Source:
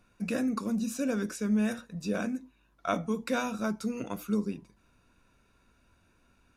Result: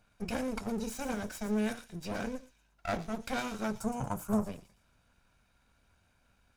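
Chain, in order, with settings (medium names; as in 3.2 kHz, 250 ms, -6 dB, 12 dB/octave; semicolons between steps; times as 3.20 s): comb filter that takes the minimum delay 1.3 ms; 3.75–4.46 s: graphic EQ 125/1000/2000/4000/8000 Hz +12/+10/-5/-11/+10 dB; feedback echo behind a high-pass 115 ms, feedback 39%, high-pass 3.9 kHz, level -8 dB; trim -2 dB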